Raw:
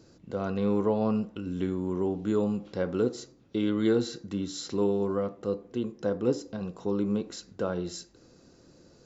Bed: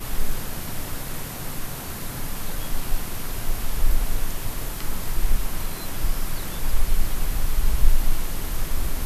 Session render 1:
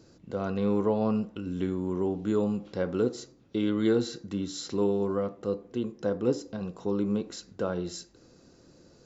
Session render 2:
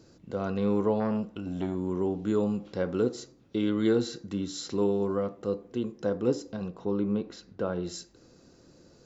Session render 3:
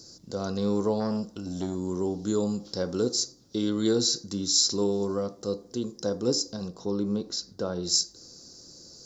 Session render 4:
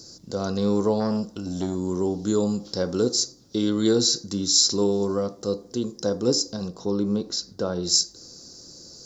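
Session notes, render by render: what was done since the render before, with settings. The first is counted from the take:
nothing audible
1–1.75 core saturation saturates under 520 Hz; 6.68–7.83 air absorption 140 m
resonant high shelf 3600 Hz +12.5 dB, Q 3
gain +4 dB

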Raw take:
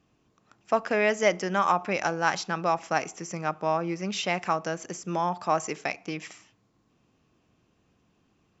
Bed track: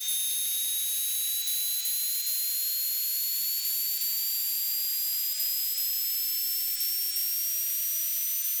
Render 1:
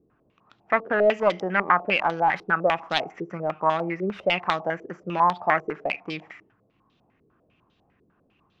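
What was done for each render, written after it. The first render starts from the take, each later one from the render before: self-modulated delay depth 0.2 ms; stepped low-pass 10 Hz 420–3700 Hz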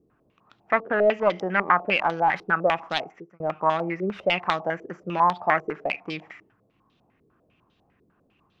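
0.8–1.36 air absorption 110 m; 2.83–3.4 fade out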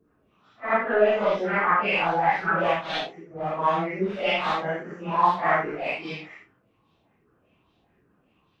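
phase scrambler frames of 0.2 s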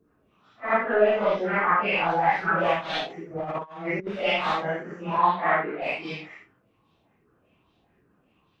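0.86–2.1 air absorption 78 m; 3.1–4.07 negative-ratio compressor -31 dBFS, ratio -0.5; 5.18–5.82 Chebyshev band-pass 170–4000 Hz, order 4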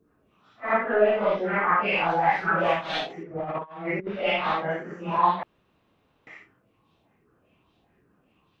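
0.72–1.73 air absorption 110 m; 3.23–4.71 LPF 3400 Hz; 5.43–6.27 room tone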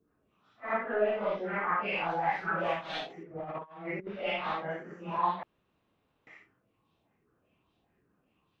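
gain -8 dB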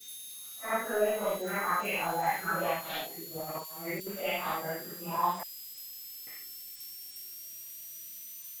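add bed track -16 dB

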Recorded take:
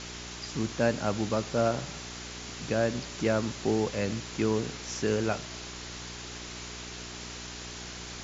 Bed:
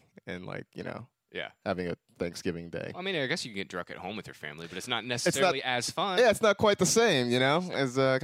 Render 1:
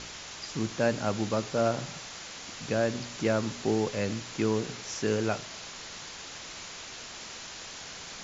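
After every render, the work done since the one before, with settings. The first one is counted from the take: de-hum 60 Hz, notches 7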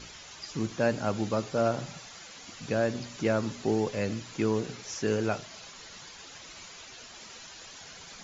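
denoiser 9 dB, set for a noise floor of -43 dBFS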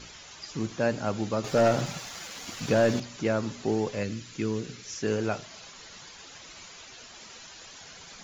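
1.44–3 sample leveller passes 2; 4.03–5.03 bell 770 Hz -10.5 dB 1.3 oct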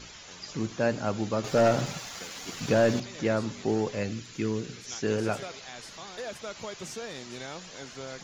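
add bed -15.5 dB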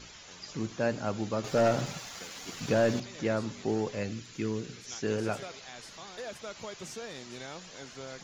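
gain -3 dB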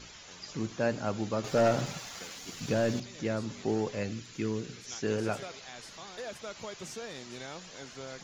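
2.35–3.5 bell 970 Hz -4.5 dB 2.9 oct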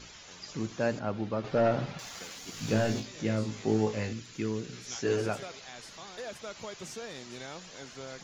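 0.99–1.99 air absorption 210 m; 2.52–4.13 flutter echo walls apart 3.2 m, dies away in 0.23 s; 4.71–5.26 doubler 16 ms -2.5 dB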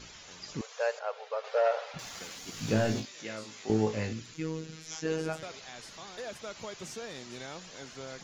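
0.61–1.94 brick-wall FIR high-pass 430 Hz; 3.05–3.7 HPF 1200 Hz 6 dB/oct; 4.34–5.43 robotiser 159 Hz

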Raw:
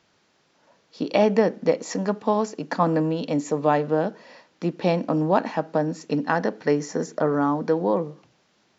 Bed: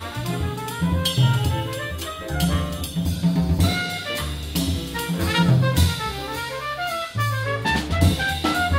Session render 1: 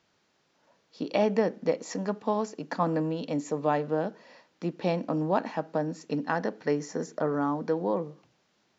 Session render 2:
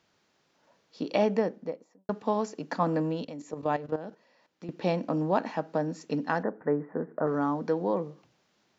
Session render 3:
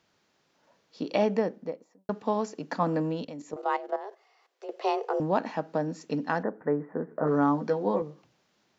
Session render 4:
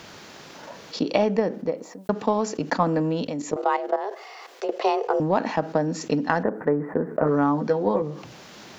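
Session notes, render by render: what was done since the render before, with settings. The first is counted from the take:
gain -6 dB
1.17–2.09 studio fade out; 3.23–4.69 level quantiser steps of 13 dB; 6.43–7.27 steep low-pass 1700 Hz
3.56–5.2 frequency shift +200 Hz; 7.11–8.02 doubler 14 ms -3 dB
transient shaper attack +6 dB, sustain -2 dB; fast leveller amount 50%

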